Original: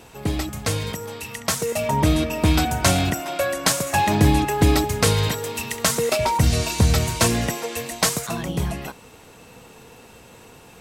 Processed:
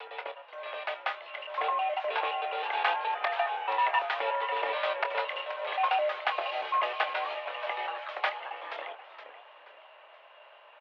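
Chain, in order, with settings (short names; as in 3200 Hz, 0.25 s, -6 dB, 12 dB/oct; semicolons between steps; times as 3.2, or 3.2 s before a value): slices in reverse order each 0.105 s, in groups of 5; vibrato 0.46 Hz 7 cents; mistuned SSB +140 Hz 450–3000 Hz; doubler 25 ms -9.5 dB; outdoor echo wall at 130 m, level -27 dB; warbling echo 0.475 s, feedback 38%, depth 179 cents, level -12 dB; gain -5.5 dB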